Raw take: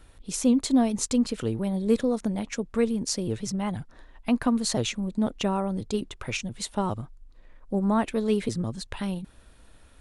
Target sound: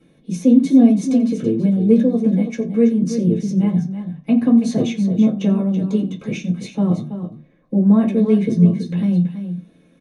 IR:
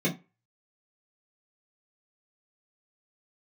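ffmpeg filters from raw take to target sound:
-filter_complex "[0:a]aecho=1:1:86|329:0.112|0.316[link_01];[1:a]atrim=start_sample=2205[link_02];[link_01][link_02]afir=irnorm=-1:irlink=0,volume=-9.5dB"

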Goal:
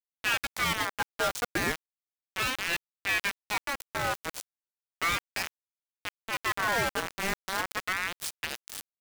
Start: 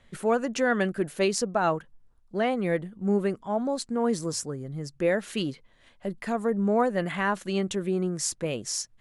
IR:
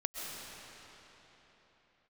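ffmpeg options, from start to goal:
-filter_complex "[0:a]asplit=2[link_01][link_02];[link_02]adelay=280,highpass=300,lowpass=3400,asoftclip=type=hard:threshold=-19.5dB,volume=-13dB[link_03];[link_01][link_03]amix=inputs=2:normalize=0,acrusher=bits=3:mix=0:aa=0.000001,aeval=exprs='val(0)*sin(2*PI*1600*n/s+1600*0.4/0.35*sin(2*PI*0.35*n/s))':channel_layout=same,volume=-3dB"

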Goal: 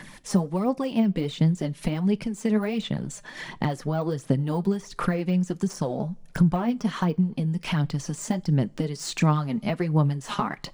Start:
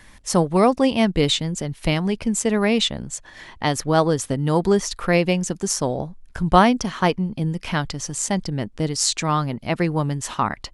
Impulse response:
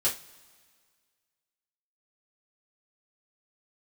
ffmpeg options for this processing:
-filter_complex "[0:a]deesser=0.8,lowshelf=frequency=110:width_type=q:width=3:gain=-10.5,acompressor=threshold=-26dB:ratio=6,aphaser=in_gain=1:out_gain=1:delay=5:decay=0.52:speed=1.4:type=sinusoidal,asplit=2[link_01][link_02];[1:a]atrim=start_sample=2205[link_03];[link_02][link_03]afir=irnorm=-1:irlink=0,volume=-24dB[link_04];[link_01][link_04]amix=inputs=2:normalize=0,volume=1.5dB"

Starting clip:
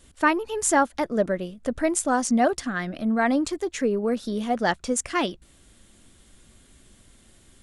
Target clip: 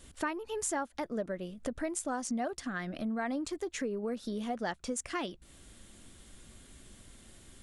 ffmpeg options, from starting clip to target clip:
ffmpeg -i in.wav -af "acompressor=threshold=-36dB:ratio=3" out.wav

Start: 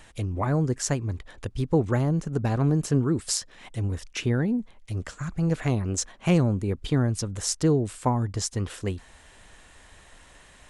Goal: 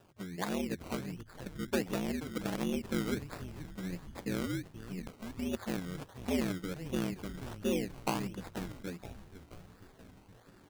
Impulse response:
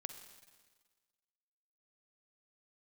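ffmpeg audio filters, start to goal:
-filter_complex "[0:a]equalizer=frequency=4600:width=2.6:gain=-14,aeval=exprs='val(0)*sin(2*PI*96*n/s)':channel_layout=same,asetrate=41625,aresample=44100,atempo=1.05946,highpass=130,highshelf=frequency=2600:width_type=q:width=1.5:gain=-6,asplit=2[link_01][link_02];[link_02]asplit=7[link_03][link_04][link_05][link_06][link_07][link_08][link_09];[link_03]adelay=479,afreqshift=-98,volume=-12dB[link_10];[link_04]adelay=958,afreqshift=-196,volume=-16.2dB[link_11];[link_05]adelay=1437,afreqshift=-294,volume=-20.3dB[link_12];[link_06]adelay=1916,afreqshift=-392,volume=-24.5dB[link_13];[link_07]adelay=2395,afreqshift=-490,volume=-28.6dB[link_14];[link_08]adelay=2874,afreqshift=-588,volume=-32.8dB[link_15];[link_09]adelay=3353,afreqshift=-686,volume=-36.9dB[link_16];[link_10][link_11][link_12][link_13][link_14][link_15][link_16]amix=inputs=7:normalize=0[link_17];[link_01][link_17]amix=inputs=2:normalize=0,acrusher=samples=20:mix=1:aa=0.000001:lfo=1:lforange=12:lforate=1.4,volume=-6.5dB"

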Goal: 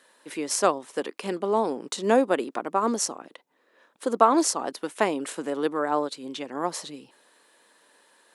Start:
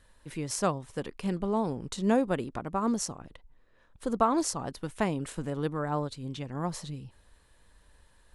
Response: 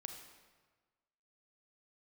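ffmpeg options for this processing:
-af "highpass=frequency=280:width=0.5412,highpass=frequency=280:width=1.3066,volume=7dB"

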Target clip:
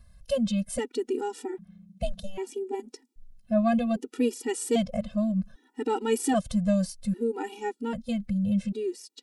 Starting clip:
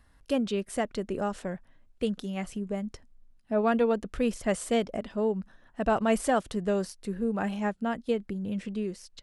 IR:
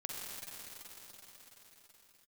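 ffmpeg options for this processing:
-filter_complex "[0:a]equalizer=frequency=1300:width_type=o:width=2.4:gain=-10.5,asettb=1/sr,asplit=3[link_01][link_02][link_03];[link_01]atrim=end=1.454[link_04];[link_02]atrim=start=1.45:end=2.8,asetpts=PTS-STARTPTS,afade=type=in:duration=0.004:curve=qsin,afade=type=out:start_time=1.346:duration=0.004:curve=qsin,aeval=exprs='val(0)*sin(2*PI*190*n/s)':channel_layout=same[link_05];[link_03]atrim=start=2.796[link_06];[link_04][link_05]acrossfade=duration=0.004:curve1=hsin:curve2=qsin[link_07];[link_07][link_06]acrossfade=duration=0.004:curve1=qsin:curve2=hsin,afftfilt=real='re*gt(sin(2*PI*0.63*pts/sr)*(1-2*mod(floor(b*sr/1024/250),2)),0)':imag='im*gt(sin(2*PI*0.63*pts/sr)*(1-2*mod(floor(b*sr/1024/250),2)),0)':win_size=1024:overlap=0.75,volume=8.5dB"

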